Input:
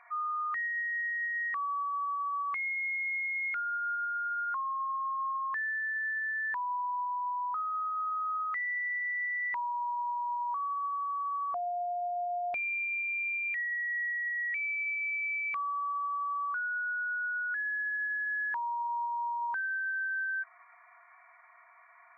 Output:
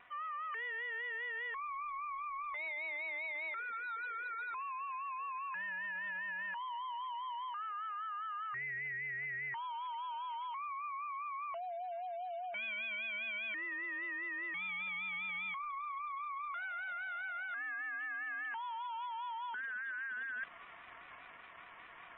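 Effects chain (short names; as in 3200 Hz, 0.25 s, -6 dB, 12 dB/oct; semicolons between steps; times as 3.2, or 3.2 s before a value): CVSD 16 kbps; low shelf 330 Hz -3.5 dB; vibrato 5 Hz 80 cents; reverse; compressor 6:1, threshold -44 dBFS, peak gain reduction 12 dB; reverse; high shelf 2200 Hz +3 dB; de-hum 255 Hz, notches 2; spectral gate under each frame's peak -30 dB strong; gain +2.5 dB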